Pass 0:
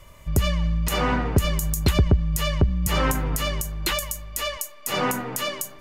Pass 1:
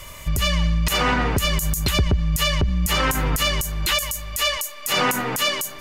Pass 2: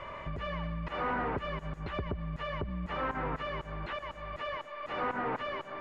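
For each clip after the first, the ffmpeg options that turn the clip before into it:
-filter_complex "[0:a]tiltshelf=f=1.4k:g=-5,asplit=2[a][b];[b]acompressor=threshold=-31dB:ratio=6,volume=2.5dB[c];[a][c]amix=inputs=2:normalize=0,alimiter=limit=-14dB:level=0:latency=1:release=72,volume=4dB"
-filter_complex "[0:a]acompressor=threshold=-32dB:ratio=2,asplit=2[a][b];[b]highpass=f=720:p=1,volume=22dB,asoftclip=type=tanh:threshold=-13dB[c];[a][c]amix=inputs=2:normalize=0,lowpass=f=1.2k:p=1,volume=-6dB,lowpass=1.7k,volume=-7.5dB"

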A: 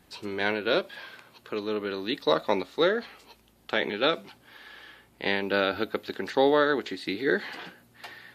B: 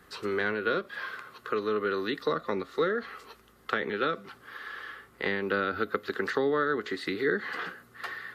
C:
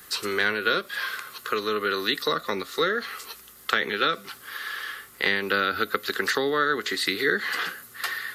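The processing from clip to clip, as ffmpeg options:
-filter_complex "[0:a]acrossover=split=270[a][b];[b]acompressor=threshold=-33dB:ratio=6[c];[a][c]amix=inputs=2:normalize=0,superequalizer=7b=2:10b=3.98:11b=2.51"
-af "crystalizer=i=8:c=0"

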